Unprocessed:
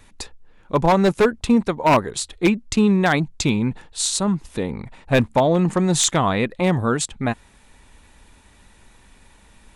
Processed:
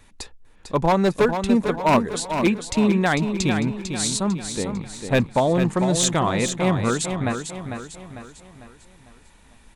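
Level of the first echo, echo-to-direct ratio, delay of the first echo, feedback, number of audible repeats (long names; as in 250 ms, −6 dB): −7.5 dB, −6.5 dB, 449 ms, 45%, 4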